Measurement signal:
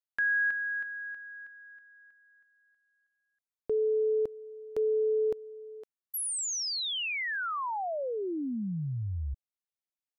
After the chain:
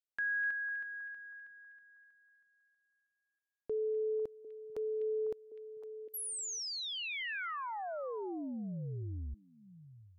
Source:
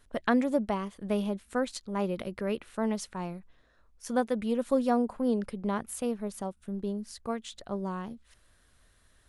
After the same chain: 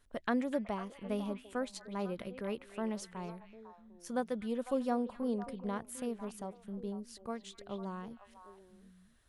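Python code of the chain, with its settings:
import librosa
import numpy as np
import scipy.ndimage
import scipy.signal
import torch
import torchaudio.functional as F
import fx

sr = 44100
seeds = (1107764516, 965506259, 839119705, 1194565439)

y = fx.echo_stepped(x, sr, ms=250, hz=2600.0, octaves=-1.4, feedback_pct=70, wet_db=-6.0)
y = F.gain(torch.from_numpy(y), -7.0).numpy()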